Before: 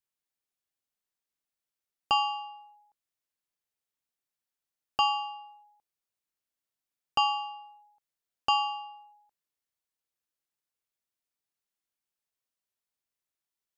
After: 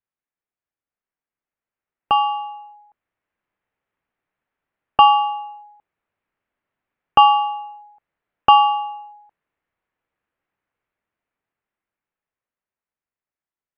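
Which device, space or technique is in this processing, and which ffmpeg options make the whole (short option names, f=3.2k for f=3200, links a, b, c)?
action camera in a waterproof case: -af "lowpass=f=2.3k:w=0.5412,lowpass=f=2.3k:w=1.3066,dynaudnorm=f=230:g=21:m=14dB,volume=2.5dB" -ar 48000 -c:a aac -b:a 128k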